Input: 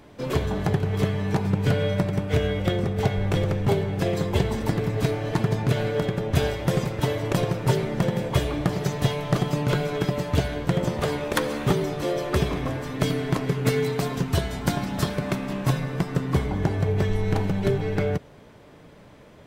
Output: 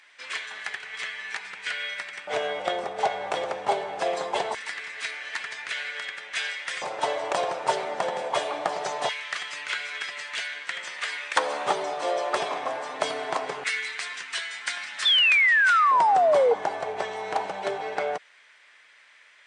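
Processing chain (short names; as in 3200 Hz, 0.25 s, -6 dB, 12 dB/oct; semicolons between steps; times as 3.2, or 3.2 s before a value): LFO high-pass square 0.22 Hz 740–1900 Hz; painted sound fall, 15.05–16.54, 450–3600 Hz -19 dBFS; brick-wall FIR low-pass 9700 Hz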